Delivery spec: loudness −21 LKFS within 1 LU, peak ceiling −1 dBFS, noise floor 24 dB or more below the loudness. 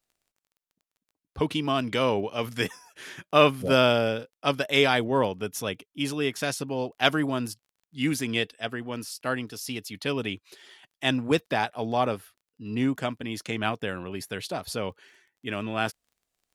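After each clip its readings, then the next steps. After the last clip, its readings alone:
crackle rate 20 per second; integrated loudness −27.5 LKFS; sample peak −4.0 dBFS; target loudness −21.0 LKFS
→ click removal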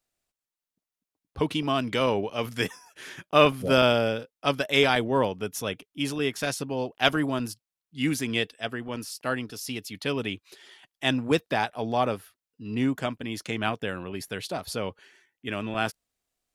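crackle rate 0.060 per second; integrated loudness −27.5 LKFS; sample peak −4.0 dBFS; target loudness −21.0 LKFS
→ level +6.5 dB
brickwall limiter −1 dBFS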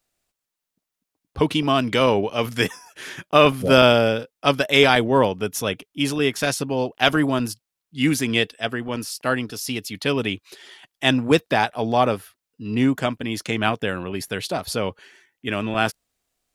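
integrated loudness −21.0 LKFS; sample peak −1.0 dBFS; background noise floor −85 dBFS

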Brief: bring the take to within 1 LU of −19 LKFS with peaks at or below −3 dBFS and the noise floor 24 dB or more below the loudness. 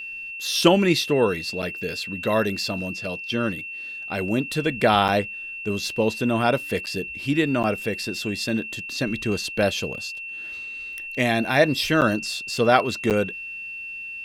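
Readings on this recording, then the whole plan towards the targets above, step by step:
number of dropouts 6; longest dropout 8.3 ms; interfering tone 2,700 Hz; level of the tone −32 dBFS; integrated loudness −23.5 LKFS; sample peak −2.5 dBFS; target loudness −19.0 LKFS
→ repair the gap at 0:01.62/0:05.08/0:06.86/0:07.63/0:12.01/0:13.10, 8.3 ms
notch filter 2,700 Hz, Q 30
level +4.5 dB
brickwall limiter −3 dBFS

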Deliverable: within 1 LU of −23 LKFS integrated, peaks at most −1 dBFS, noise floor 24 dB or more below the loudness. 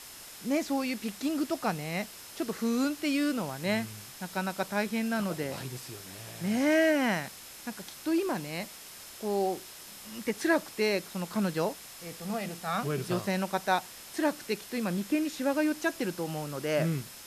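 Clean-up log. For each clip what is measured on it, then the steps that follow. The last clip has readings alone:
interfering tone 5,200 Hz; level of the tone −56 dBFS; background noise floor −47 dBFS; target noise floor −55 dBFS; integrated loudness −31.0 LKFS; sample peak −13.0 dBFS; target loudness −23.0 LKFS
→ notch filter 5,200 Hz, Q 30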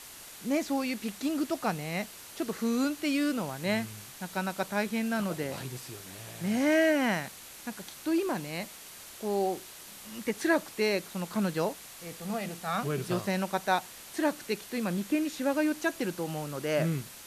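interfering tone none found; background noise floor −48 dBFS; target noise floor −55 dBFS
→ broadband denoise 7 dB, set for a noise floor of −48 dBFS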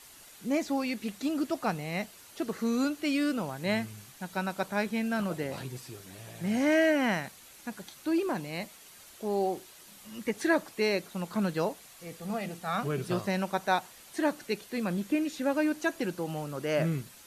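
background noise floor −53 dBFS; target noise floor −55 dBFS
→ broadband denoise 6 dB, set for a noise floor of −53 dBFS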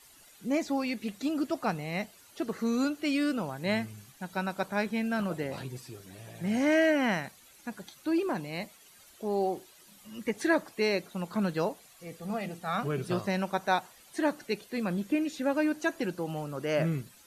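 background noise floor −57 dBFS; integrated loudness −31.0 LKFS; sample peak −13.5 dBFS; target loudness −23.0 LKFS
→ level +8 dB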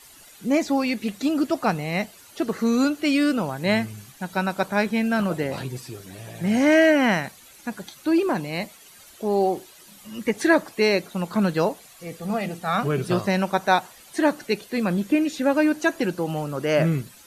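integrated loudness −23.0 LKFS; sample peak −5.5 dBFS; background noise floor −49 dBFS

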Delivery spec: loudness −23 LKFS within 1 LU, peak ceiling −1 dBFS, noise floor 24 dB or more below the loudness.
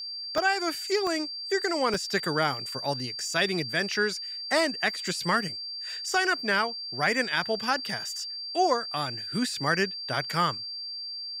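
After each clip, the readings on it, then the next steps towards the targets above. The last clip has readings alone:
number of dropouts 4; longest dropout 1.1 ms; interfering tone 4,700 Hz; level of the tone −34 dBFS; integrated loudness −27.5 LKFS; sample peak −11.5 dBFS; target loudness −23.0 LKFS
→ repair the gap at 0:00.38/0:01.07/0:01.94/0:09.54, 1.1 ms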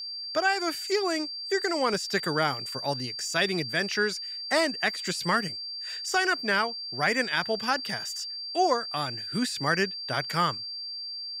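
number of dropouts 0; interfering tone 4,700 Hz; level of the tone −34 dBFS
→ notch filter 4,700 Hz, Q 30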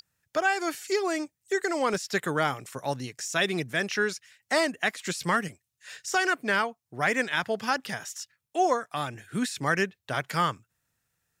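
interfering tone none found; integrated loudness −28.5 LKFS; sample peak −12.0 dBFS; target loudness −23.0 LKFS
→ level +5.5 dB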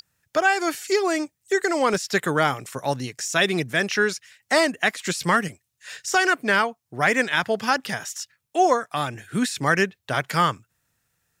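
integrated loudness −23.0 LKFS; sample peak −6.5 dBFS; background noise floor −78 dBFS

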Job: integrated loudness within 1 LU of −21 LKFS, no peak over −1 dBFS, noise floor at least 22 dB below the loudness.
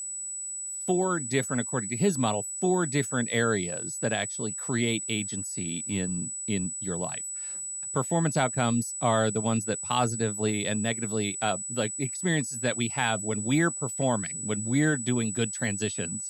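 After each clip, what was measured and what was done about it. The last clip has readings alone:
interfering tone 7,900 Hz; level of the tone −33 dBFS; integrated loudness −28.0 LKFS; sample peak −11.0 dBFS; target loudness −21.0 LKFS
→ notch filter 7,900 Hz, Q 30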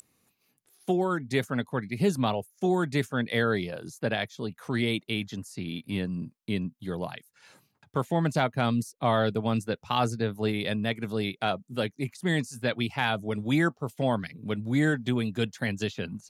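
interfering tone none found; integrated loudness −29.0 LKFS; sample peak −11.5 dBFS; target loudness −21.0 LKFS
→ level +8 dB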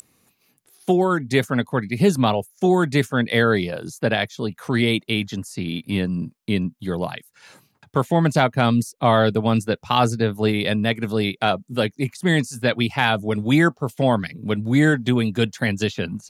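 integrated loudness −21.0 LKFS; sample peak −3.5 dBFS; background noise floor −66 dBFS

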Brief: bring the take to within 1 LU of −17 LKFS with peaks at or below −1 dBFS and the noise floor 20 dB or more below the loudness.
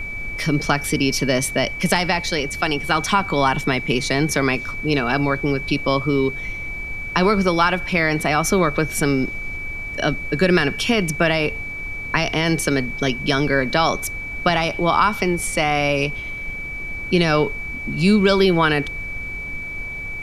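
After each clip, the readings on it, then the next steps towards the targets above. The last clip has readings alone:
interfering tone 2,300 Hz; level of the tone −28 dBFS; background noise floor −30 dBFS; target noise floor −40 dBFS; integrated loudness −20.0 LKFS; sample peak −2.0 dBFS; target loudness −17.0 LKFS
→ notch filter 2,300 Hz, Q 30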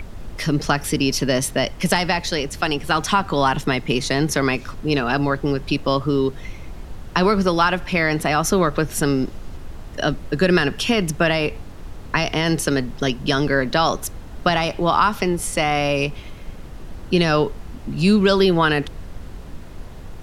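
interfering tone none found; background noise floor −36 dBFS; target noise floor −40 dBFS
→ noise reduction from a noise print 6 dB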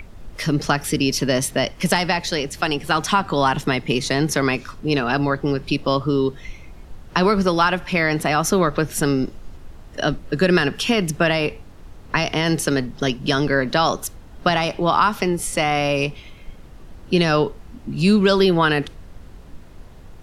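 background noise floor −42 dBFS; integrated loudness −20.0 LKFS; sample peak −2.0 dBFS; target loudness −17.0 LKFS
→ level +3 dB
brickwall limiter −1 dBFS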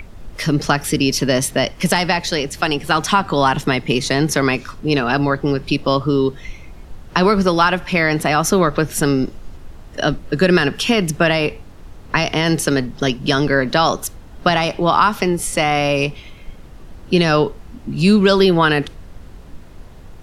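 integrated loudness −17.0 LKFS; sample peak −1.0 dBFS; background noise floor −39 dBFS

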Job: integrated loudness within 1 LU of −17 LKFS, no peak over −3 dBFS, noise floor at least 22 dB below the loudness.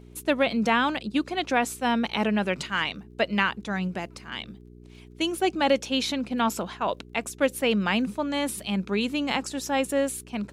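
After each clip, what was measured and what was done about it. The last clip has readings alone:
crackle rate 17 per second; mains hum 60 Hz; hum harmonics up to 420 Hz; level of the hum −46 dBFS; integrated loudness −26.5 LKFS; sample peak −8.5 dBFS; target loudness −17.0 LKFS
→ click removal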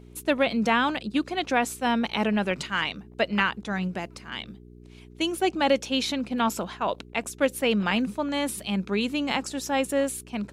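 crackle rate 0 per second; mains hum 60 Hz; hum harmonics up to 420 Hz; level of the hum −47 dBFS
→ hum removal 60 Hz, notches 7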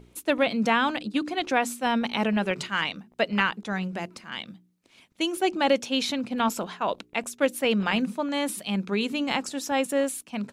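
mains hum none found; integrated loudness −26.5 LKFS; sample peak −8.0 dBFS; target loudness −17.0 LKFS
→ level +9.5 dB
brickwall limiter −3 dBFS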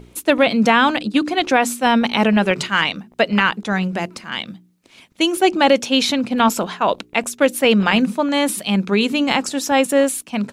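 integrated loudness −17.5 LKFS; sample peak −3.0 dBFS; background noise floor −52 dBFS

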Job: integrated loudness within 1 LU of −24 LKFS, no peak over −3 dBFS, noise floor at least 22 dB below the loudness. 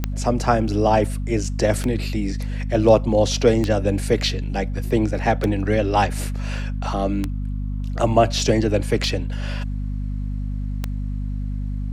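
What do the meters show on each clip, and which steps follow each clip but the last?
number of clicks 7; mains hum 50 Hz; hum harmonics up to 250 Hz; level of the hum −23 dBFS; integrated loudness −22.0 LKFS; sample peak −3.0 dBFS; target loudness −24.0 LKFS
→ click removal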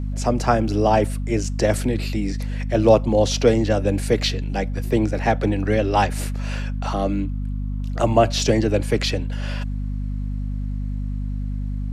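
number of clicks 0; mains hum 50 Hz; hum harmonics up to 250 Hz; level of the hum −23 dBFS
→ mains-hum notches 50/100/150/200/250 Hz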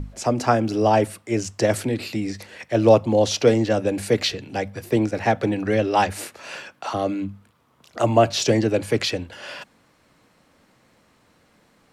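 mains hum none found; integrated loudness −21.5 LKFS; sample peak −3.5 dBFS; target loudness −24.0 LKFS
→ level −2.5 dB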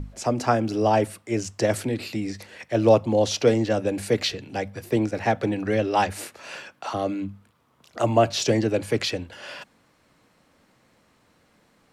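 integrated loudness −24.0 LKFS; sample peak −6.0 dBFS; background noise floor −63 dBFS

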